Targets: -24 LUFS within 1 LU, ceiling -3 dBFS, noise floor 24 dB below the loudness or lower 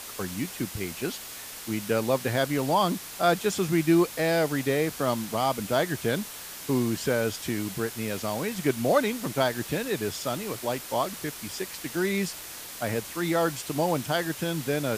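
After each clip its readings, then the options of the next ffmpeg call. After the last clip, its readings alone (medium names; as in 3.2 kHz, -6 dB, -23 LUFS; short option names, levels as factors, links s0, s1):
noise floor -41 dBFS; noise floor target -52 dBFS; loudness -28.0 LUFS; peak level -9.5 dBFS; loudness target -24.0 LUFS
-> -af "afftdn=nr=11:nf=-41"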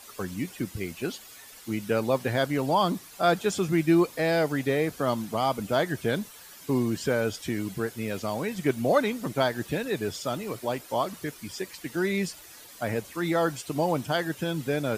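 noise floor -48 dBFS; noise floor target -52 dBFS
-> -af "afftdn=nr=6:nf=-48"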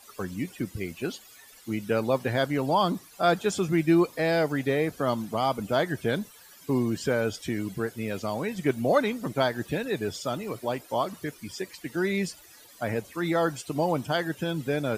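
noise floor -52 dBFS; loudness -28.0 LUFS; peak level -10.0 dBFS; loudness target -24.0 LUFS
-> -af "volume=1.58"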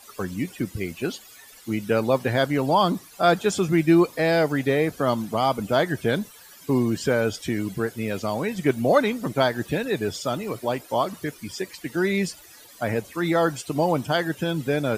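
loudness -24.0 LUFS; peak level -6.0 dBFS; noise floor -48 dBFS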